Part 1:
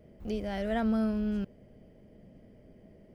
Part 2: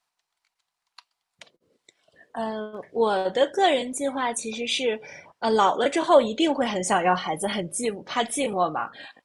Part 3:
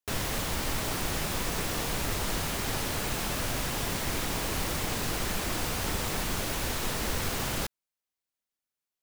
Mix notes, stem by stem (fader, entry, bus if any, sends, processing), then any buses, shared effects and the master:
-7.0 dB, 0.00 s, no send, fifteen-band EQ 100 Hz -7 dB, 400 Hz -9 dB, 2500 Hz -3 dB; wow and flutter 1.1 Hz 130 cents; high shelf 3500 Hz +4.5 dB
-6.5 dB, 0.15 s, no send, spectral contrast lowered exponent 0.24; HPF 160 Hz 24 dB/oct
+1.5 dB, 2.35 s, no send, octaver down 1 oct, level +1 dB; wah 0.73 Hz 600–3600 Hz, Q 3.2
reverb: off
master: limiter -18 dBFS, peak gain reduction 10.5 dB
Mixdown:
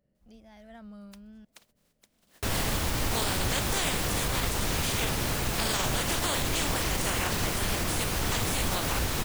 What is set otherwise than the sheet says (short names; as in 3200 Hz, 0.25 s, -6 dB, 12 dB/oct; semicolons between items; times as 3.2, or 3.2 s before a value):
stem 1 -7.0 dB -> -16.5 dB; stem 3: missing wah 0.73 Hz 600–3600 Hz, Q 3.2